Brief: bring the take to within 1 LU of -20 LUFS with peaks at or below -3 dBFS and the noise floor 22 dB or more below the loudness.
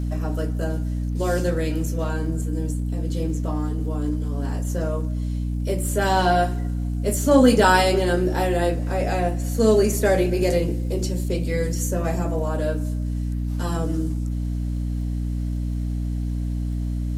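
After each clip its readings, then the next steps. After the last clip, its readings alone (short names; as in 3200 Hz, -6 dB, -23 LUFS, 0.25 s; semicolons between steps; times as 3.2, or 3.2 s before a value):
ticks 33/s; hum 60 Hz; harmonics up to 300 Hz; hum level -23 dBFS; loudness -23.5 LUFS; peak -4.0 dBFS; loudness target -20.0 LUFS
-> de-click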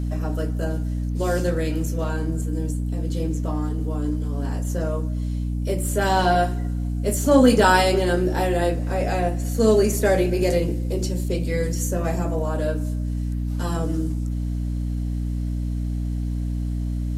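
ticks 0.058/s; hum 60 Hz; harmonics up to 300 Hz; hum level -23 dBFS
-> notches 60/120/180/240/300 Hz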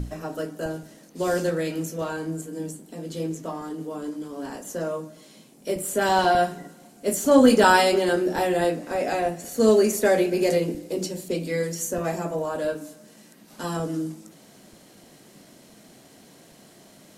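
hum none; loudness -24.0 LUFS; peak -5.0 dBFS; loudness target -20.0 LUFS
-> gain +4 dB; limiter -3 dBFS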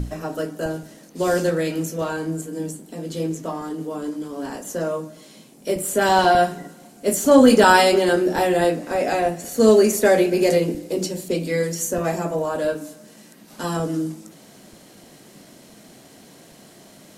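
loudness -20.5 LUFS; peak -3.0 dBFS; noise floor -48 dBFS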